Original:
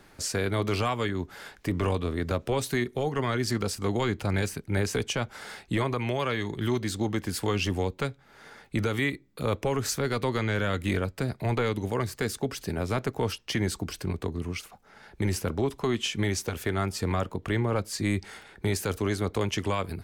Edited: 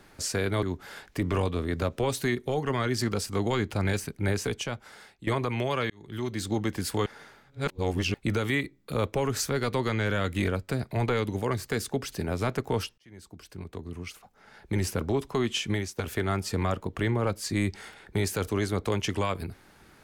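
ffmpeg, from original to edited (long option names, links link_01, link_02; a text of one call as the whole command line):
ffmpeg -i in.wav -filter_complex "[0:a]asplit=8[link_01][link_02][link_03][link_04][link_05][link_06][link_07][link_08];[link_01]atrim=end=0.632[link_09];[link_02]atrim=start=1.118:end=5.76,asetpts=PTS-STARTPTS,afade=type=out:start_time=3.622:duration=1.02:silence=0.158489[link_10];[link_03]atrim=start=5.76:end=6.39,asetpts=PTS-STARTPTS,afade=type=in:duration=0.004:curve=hsin:silence=0.158489,afade=type=out:start_time=0.626:duration=0.004:curve=hsin[link_11];[link_04]atrim=start=6.39:end=7.552,asetpts=PTS-STARTPTS,afade=type=in:duration=0.6[link_12];[link_05]atrim=start=7.548:end=8.632,asetpts=PTS-STARTPTS,areverse[link_13];[link_06]atrim=start=8.628:end=13.47,asetpts=PTS-STARTPTS,afade=type=out:start_time=4.838:duration=0.004:curve=hsin[link_14];[link_07]atrim=start=13.47:end=16.47,asetpts=PTS-STARTPTS,afade=type=in:duration=1.87,afade=type=out:start_time=2.72:duration=0.28:silence=0.149624[link_15];[link_08]atrim=start=16.47,asetpts=PTS-STARTPTS,afade=type=in:duration=0.004:curve=hsin:silence=0.149624[link_16];[link_10][link_11][link_12]concat=n=3:v=0:a=1[link_17];[link_09][link_17]acrossfade=duration=0.004:curve1=hsin:curve2=hsin[link_18];[link_18][link_13]acrossfade=duration=0.004:curve1=hsin:curve2=hsin[link_19];[link_14][link_15][link_16]concat=n=3:v=0:a=1[link_20];[link_19][link_20]acrossfade=duration=0.004:curve1=hsin:curve2=hsin" out.wav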